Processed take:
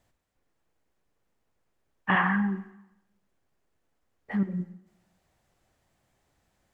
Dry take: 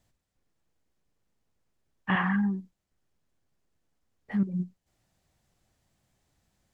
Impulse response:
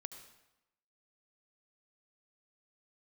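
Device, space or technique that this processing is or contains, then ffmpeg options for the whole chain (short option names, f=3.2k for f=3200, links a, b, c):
filtered reverb send: -filter_complex "[0:a]asplit=2[a][b];[b]highpass=270,lowpass=3k[c];[1:a]atrim=start_sample=2205[d];[c][d]afir=irnorm=-1:irlink=0,volume=2dB[e];[a][e]amix=inputs=2:normalize=0"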